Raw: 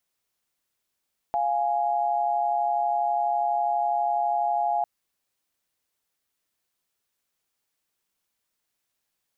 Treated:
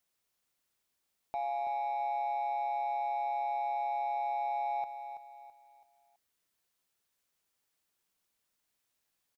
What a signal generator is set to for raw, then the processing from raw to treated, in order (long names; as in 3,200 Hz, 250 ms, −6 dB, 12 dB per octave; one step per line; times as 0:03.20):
held notes F5/G#5 sine, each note −24.5 dBFS 3.50 s
brickwall limiter −29.5 dBFS
leveller curve on the samples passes 1
repeating echo 330 ms, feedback 37%, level −9.5 dB